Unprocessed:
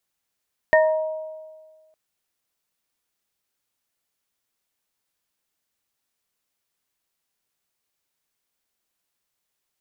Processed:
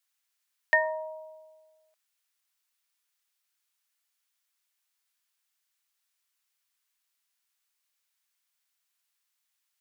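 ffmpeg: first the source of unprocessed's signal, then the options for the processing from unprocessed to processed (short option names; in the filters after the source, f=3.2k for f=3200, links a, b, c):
-f lavfi -i "aevalsrc='0.251*pow(10,-3*t/1.6)*sin(2*PI*628*t)+0.0891*pow(10,-3*t/1.14)*sin(2*PI*946*t)+0.211*pow(10,-3*t/0.31)*sin(2*PI*1840*t)':d=1.21:s=44100"
-af "highpass=1.2k"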